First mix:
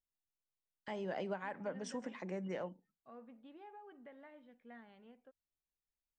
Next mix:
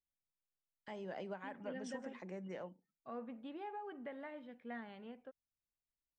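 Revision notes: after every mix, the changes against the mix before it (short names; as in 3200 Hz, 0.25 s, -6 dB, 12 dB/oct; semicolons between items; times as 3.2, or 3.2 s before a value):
first voice -5.0 dB; second voice +8.5 dB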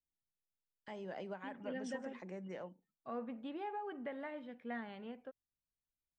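second voice +3.5 dB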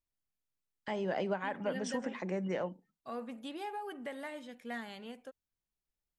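first voice +11.0 dB; second voice: remove air absorption 450 m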